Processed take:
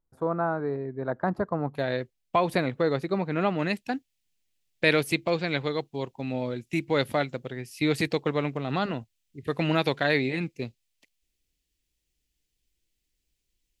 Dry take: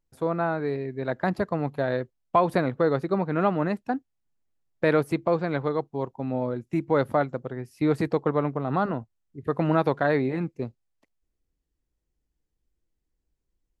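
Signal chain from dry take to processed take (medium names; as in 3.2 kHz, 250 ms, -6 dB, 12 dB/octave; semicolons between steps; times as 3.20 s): resonant high shelf 1.8 kHz -9 dB, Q 1.5, from 1.75 s +6.5 dB, from 3.59 s +12.5 dB; trim -2 dB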